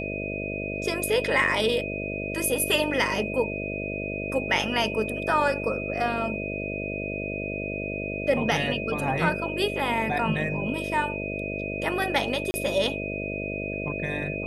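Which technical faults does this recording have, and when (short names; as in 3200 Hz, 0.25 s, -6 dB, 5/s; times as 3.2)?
buzz 50 Hz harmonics 13 -33 dBFS
tone 2500 Hz -33 dBFS
12.51–12.54 gap 30 ms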